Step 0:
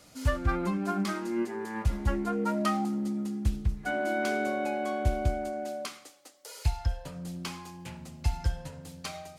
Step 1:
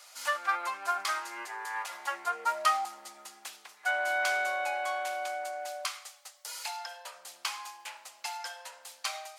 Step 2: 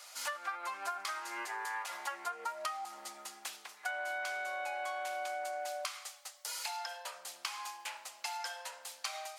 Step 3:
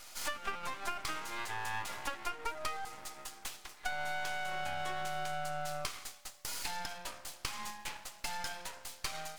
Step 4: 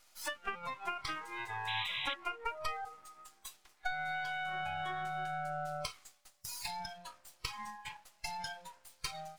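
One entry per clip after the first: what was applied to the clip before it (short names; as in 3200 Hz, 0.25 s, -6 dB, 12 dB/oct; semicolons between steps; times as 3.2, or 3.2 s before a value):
HPF 780 Hz 24 dB/oct; gain +5 dB
compressor 12:1, threshold -36 dBFS, peak gain reduction 15.5 dB; gain +1 dB
half-wave rectifier; gain +4.5 dB
spectral noise reduction 15 dB; painted sound noise, 1.67–2.14, 1900–4000 Hz -40 dBFS; gain +1 dB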